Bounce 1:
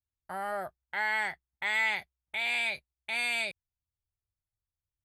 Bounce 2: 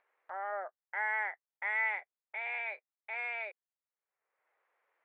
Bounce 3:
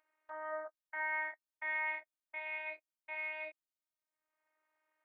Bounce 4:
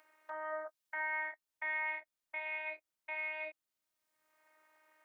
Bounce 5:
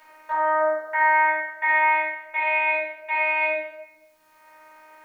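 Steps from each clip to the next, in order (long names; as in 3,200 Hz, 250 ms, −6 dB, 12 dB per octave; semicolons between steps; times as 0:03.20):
Chebyshev band-pass filter 460–2,100 Hz, order 3; upward compression, threshold −53 dBFS; level −2.5 dB
phases set to zero 311 Hz; level −1 dB
multiband upward and downward compressor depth 40%; level +1 dB
rectangular room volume 440 cubic metres, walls mixed, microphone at 4.6 metres; level +7 dB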